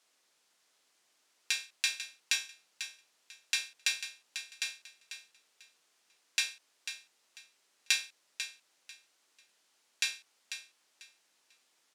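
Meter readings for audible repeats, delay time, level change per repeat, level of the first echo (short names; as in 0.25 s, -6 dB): 2, 0.494 s, -13.0 dB, -10.0 dB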